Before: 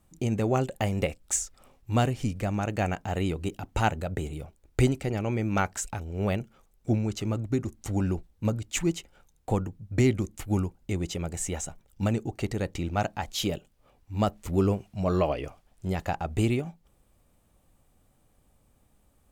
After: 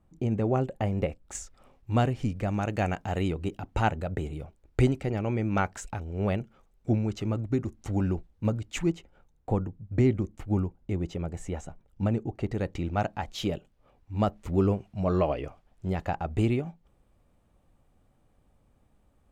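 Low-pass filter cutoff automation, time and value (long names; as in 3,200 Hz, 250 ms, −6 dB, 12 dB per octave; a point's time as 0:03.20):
low-pass filter 6 dB per octave
1,100 Hz
from 0:01.35 2,500 Hz
from 0:02.48 5,400 Hz
from 0:03.28 2,600 Hz
from 0:08.90 1,100 Hz
from 0:12.52 2,300 Hz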